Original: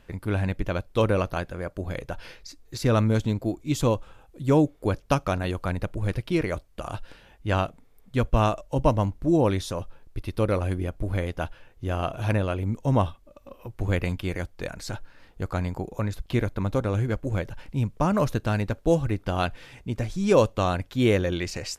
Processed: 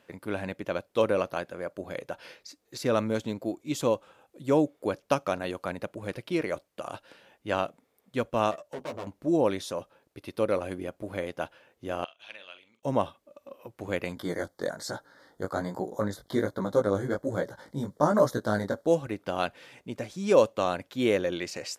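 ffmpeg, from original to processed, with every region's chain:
-filter_complex "[0:a]asettb=1/sr,asplit=3[a][b][c];[a]atrim=end=8.514[d];[b]atrim=start=8.51:end=9.07,asetpts=PTS-STARTPTS,afade=t=in:d=0.004:c=qsin,afade=t=out:st=0.556:d=0.004:c=qsin,aeval=exprs='(tanh(35.5*val(0)+0.65)-tanh(0.65))/35.5':c=same,asplit=2[e][f];[f]adelay=12,volume=-3.5dB[g];[e][g]amix=inputs=2:normalize=0,atrim=end_sample=24696[h];[c]atrim=start=9.066[i];[d][h]acrossfade=d=0.004:c1=hsin:c2=qsin[j];[j][i]acrossfade=d=0.004:c1=qsin:c2=hsin,asettb=1/sr,asplit=3[k][l][m];[k]atrim=end=12.044[n];[l]atrim=start=12.04:end=12.83,asetpts=PTS-STARTPTS,afade=t=in:d=0.004:c=qsin,afade=t=out:st=0.786:d=0.004:c=qsin,agate=range=-15dB:threshold=-34dB:ratio=16:release=100:detection=peak,bandpass=f=3.2k:t=q:w=2.8,asplit=2[o][p];[p]adelay=44,volume=-10dB[q];[o][q]amix=inputs=2:normalize=0,atrim=end_sample=34839[r];[m]atrim=start=12.826[s];[n][r]acrossfade=d=0.004:c1=hsin:c2=qsin[t];[t][s]acrossfade=d=0.004:c1=qsin:c2=hsin,asettb=1/sr,asplit=3[u][v][w];[u]atrim=end=14.154[x];[v]atrim=start=14.15:end=18.87,asetpts=PTS-STARTPTS,afade=t=in:d=0.004:c=qsin,afade=t=out:st=4.716:d=0.004:c=qsin,acontrast=76,flanger=delay=16:depth=5.5:speed=1.2,asuperstop=centerf=2600:order=4:qfactor=1.7[y];[w]atrim=start=18.866[z];[x][y]acrossfade=d=0.004:c1=hsin:c2=qsin[aa];[aa][z]acrossfade=d=0.004:c1=qsin:c2=hsin,highpass=220,equalizer=f=560:w=4.4:g=4,volume=-3dB"

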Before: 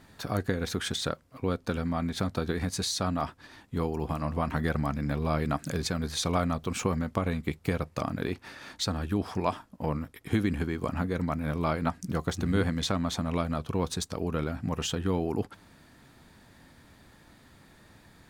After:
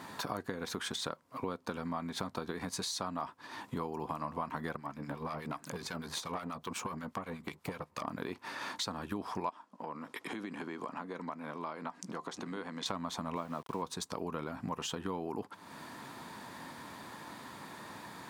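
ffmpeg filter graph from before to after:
-filter_complex "[0:a]asettb=1/sr,asplit=3[a][b][c];[a]atrim=end=4.764[d];[b]atrim=start=4.76:end=8.08,asetpts=PTS-STARTPTS,afade=t=in:d=0.004:c=qsin,afade=t=out:st=3.316:d=0.004:c=qsin,acrossover=split=1200[e][f];[e]aeval=exprs='val(0)*(1-0.7/2+0.7/2*cos(2*PI*8.2*n/s))':c=same[g];[f]aeval=exprs='val(0)*(1-0.7/2-0.7/2*cos(2*PI*8.2*n/s))':c=same[h];[g][h]amix=inputs=2:normalize=0,aeval=exprs='(tanh(14.1*val(0)+0.75)-tanh(0.75))/14.1':c=same[i];[c]atrim=start=8.076[j];[d][i]acrossfade=d=0.004:c1=hsin:c2=qsin[k];[k][j]acrossfade=d=0.004:c1=qsin:c2=hsin,asettb=1/sr,asplit=3[l][m][n];[l]atrim=end=9.494[o];[m]atrim=start=9.49:end=12.86,asetpts=PTS-STARTPTS,afade=t=in:d=0.004:c=qsin,afade=t=out:st=3.366:d=0.004:c=qsin,acompressor=threshold=-41dB:ratio=3:attack=3.2:release=140:knee=1:detection=peak,highpass=220,lowpass=7.9k[p];[n]atrim=start=12.856[q];[o][p]acrossfade=d=0.004:c1=hsin:c2=qsin[r];[r][q]acrossfade=d=0.004:c1=qsin:c2=hsin,asettb=1/sr,asplit=3[s][t][u];[s]atrim=end=13.364[v];[t]atrim=start=13.36:end=13.82,asetpts=PTS-STARTPTS,afade=t=in:d=0.004:c=qsin,afade=t=out:st=0.456:d=0.004:c=qsin,highpass=120,lowpass=6k,highshelf=f=2.4k:g=-7,aeval=exprs='val(0)*gte(abs(val(0)),0.00668)':c=same[w];[u]atrim=start=13.816[x];[v][w]acrossfade=d=0.004:c1=hsin:c2=qsin[y];[y][x]acrossfade=d=0.004:c1=qsin:c2=hsin,highpass=180,equalizer=f=1k:t=o:w=0.47:g=10.5,acompressor=threshold=-46dB:ratio=4,volume=8dB"

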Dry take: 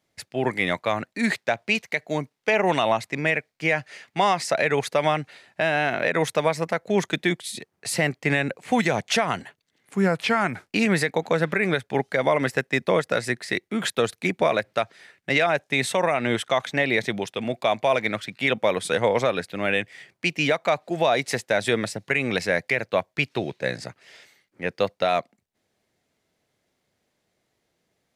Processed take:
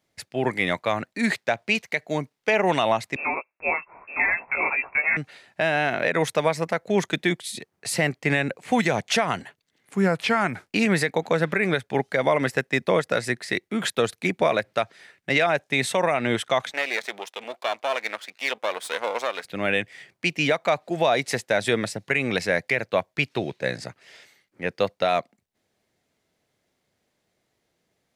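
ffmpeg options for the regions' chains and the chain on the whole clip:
-filter_complex "[0:a]asettb=1/sr,asplit=3[a][b][c];[a]atrim=end=3.164[d];[b]atrim=start=3.16:end=5.17,asetpts=PTS-STARTPTS,afade=t=in:d=0.004:c=qsin,afade=t=out:st=2.006:d=0.004:c=qsin,aecho=1:1:912:0.562,atrim=end_sample=88641,flanger=delay=15.5:depth=3.4:speed=1.1,lowpass=f=2.4k:t=q:w=0.5098,lowpass=f=2.4k:t=q:w=0.6013,lowpass=f=2.4k:t=q:w=0.9,lowpass=f=2.4k:t=q:w=2.563,afreqshift=-2800[e];[c]atrim=start=5.166[f];[d][e]acrossfade=d=0.004:c1=hsin:c2=qsin[g];[g][f]acrossfade=d=0.004:c1=qsin:c2=hsin,asettb=1/sr,asplit=3[h][i][j];[h]atrim=end=16.724[k];[i]atrim=start=16.72:end=19.45,asetpts=PTS-STARTPTS,afade=t=in:d=0.004:c=qsin,afade=t=out:st=2.726:d=0.004:c=qsin,aeval=exprs='if(lt(val(0),0),0.251*val(0),val(0))':c=same,highpass=550[l];[j]atrim=start=19.446[m];[k][l]acrossfade=d=0.004:c1=hsin:c2=qsin[n];[n][m]acrossfade=d=0.004:c1=qsin:c2=hsin"

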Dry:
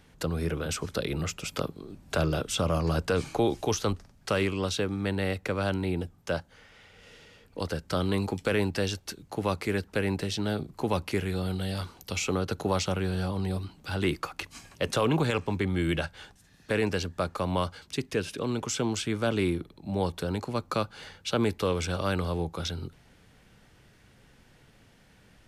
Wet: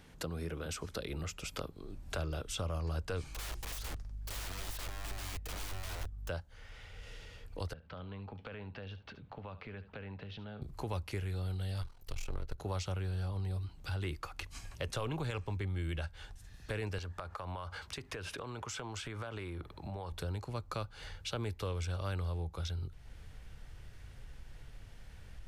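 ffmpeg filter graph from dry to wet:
-filter_complex "[0:a]asettb=1/sr,asplit=3[a][b][c];[a]atrim=end=3.294[d];[b]atrim=start=3.29:end=6.29,asetpts=PTS-STARTPTS,afade=t=in:d=0.004:c=qsin,afade=t=out:st=2.996:d=0.004:c=qsin,aeval=exprs='(mod(37.6*val(0)+1,2)-1)/37.6':c=same,aeval=exprs='val(0)+0.00398*(sin(2*PI*50*n/s)+sin(2*PI*2*50*n/s)/2+sin(2*PI*3*50*n/s)/3+sin(2*PI*4*50*n/s)/4+sin(2*PI*5*50*n/s)/5)':c=same[e];[c]atrim=start=6.286[f];[d][e]acrossfade=d=0.004:c1=hsin:c2=qsin[g];[g][f]acrossfade=d=0.004:c1=qsin:c2=hsin,asettb=1/sr,asplit=3[h][i][j];[h]atrim=end=7.734[k];[i]atrim=start=7.73:end=10.62,asetpts=PTS-STARTPTS,afade=t=in:d=0.004:c=qsin,afade=t=out:st=2.886:d=0.004:c=qsin,highpass=130,equalizer=f=230:t=q:w=4:g=5,equalizer=f=340:t=q:w=4:g=-10,equalizer=f=2k:t=q:w=4:g=-4,lowpass=f=3.1k:w=0.5412,lowpass=f=3.1k:w=1.3066,acompressor=threshold=-46dB:ratio=2.5:attack=3.2:release=140:knee=1:detection=peak,aecho=1:1:72:0.178,atrim=end_sample=127449[l];[j]atrim=start=10.616[m];[k][l]acrossfade=d=0.004:c1=hsin:c2=qsin[n];[n][m]acrossfade=d=0.004:c1=qsin:c2=hsin,asettb=1/sr,asplit=3[o][p][q];[o]atrim=end=11.824[r];[p]atrim=start=11.82:end=12.58,asetpts=PTS-STARTPTS,afade=t=in:d=0.004:c=qsin,afade=t=out:st=0.756:d=0.004:c=qsin,aeval=exprs='if(lt(val(0),0),0.251*val(0),val(0))':c=same,aeval=exprs='val(0)*sin(2*PI*21*n/s)':c=same[s];[q]atrim=start=12.576[t];[r][s]acrossfade=d=0.004:c1=hsin:c2=qsin[u];[u][t]acrossfade=d=0.004:c1=qsin:c2=hsin,asettb=1/sr,asplit=3[v][w][x];[v]atrim=end=16.984[y];[w]atrim=start=16.98:end=20.12,asetpts=PTS-STARTPTS,afade=t=in:d=0.004:c=qsin,afade=t=out:st=3.136:d=0.004:c=qsin,highpass=55,equalizer=f=1.1k:w=0.54:g=10.5,acompressor=threshold=-32dB:ratio=6:attack=3.2:release=140:knee=1:detection=peak[z];[x]atrim=start=20.116[aa];[y][z]acrossfade=d=0.004:c1=hsin:c2=qsin[ab];[ab][aa]acrossfade=d=0.004:c1=qsin:c2=hsin,asubboost=boost=8.5:cutoff=71,acompressor=threshold=-44dB:ratio=2"

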